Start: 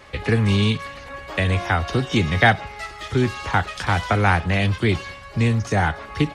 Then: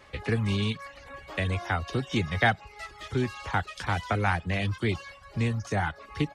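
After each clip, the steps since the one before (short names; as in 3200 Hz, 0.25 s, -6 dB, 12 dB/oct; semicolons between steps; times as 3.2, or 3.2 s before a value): reverb removal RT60 0.51 s; gain -7.5 dB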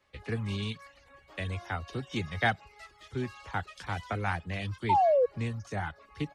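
painted sound fall, 4.89–5.26, 470–940 Hz -19 dBFS; three-band expander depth 40%; gain -6 dB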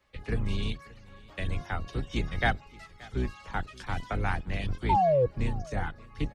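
octaver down 2 oct, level +4 dB; echo 0.576 s -22.5 dB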